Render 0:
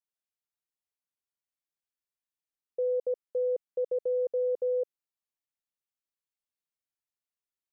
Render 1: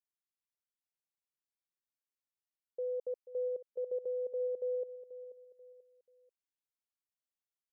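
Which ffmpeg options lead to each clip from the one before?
-af "aecho=1:1:486|972|1458:0.2|0.0718|0.0259,volume=-8dB"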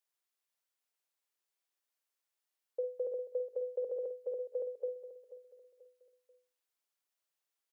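-filter_complex "[0:a]highpass=f=340:w=0.5412,highpass=f=340:w=1.3066,bandreject=f=50:t=h:w=6,bandreject=f=100:t=h:w=6,bandreject=f=150:t=h:w=6,bandreject=f=200:t=h:w=6,bandreject=f=250:t=h:w=6,bandreject=f=300:t=h:w=6,bandreject=f=350:t=h:w=6,bandreject=f=400:t=h:w=6,bandreject=f=450:t=h:w=6,bandreject=f=500:t=h:w=6,asplit=2[a][b];[b]adelay=50,volume=-11dB[c];[a][c]amix=inputs=2:normalize=0,volume=6dB"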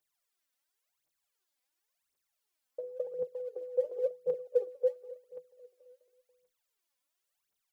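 -af "aphaser=in_gain=1:out_gain=1:delay=4.1:decay=0.77:speed=0.93:type=triangular"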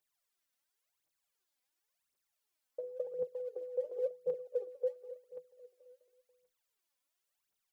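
-af "alimiter=level_in=0.5dB:limit=-24dB:level=0:latency=1:release=164,volume=-0.5dB,volume=-1.5dB"

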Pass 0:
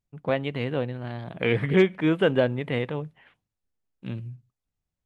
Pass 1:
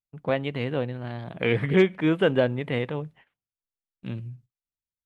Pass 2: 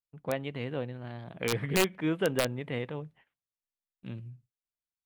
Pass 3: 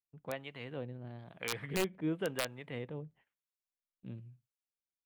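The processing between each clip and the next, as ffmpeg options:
-af "agate=range=-18dB:threshold=-51dB:ratio=16:detection=peak"
-af "aeval=exprs='(mod(3.35*val(0)+1,2)-1)/3.35':c=same,volume=-7dB"
-filter_complex "[0:a]acrossover=split=680[a][b];[a]aeval=exprs='val(0)*(1-0.7/2+0.7/2*cos(2*PI*1*n/s))':c=same[c];[b]aeval=exprs='val(0)*(1-0.7/2-0.7/2*cos(2*PI*1*n/s))':c=same[d];[c][d]amix=inputs=2:normalize=0,volume=-4dB"

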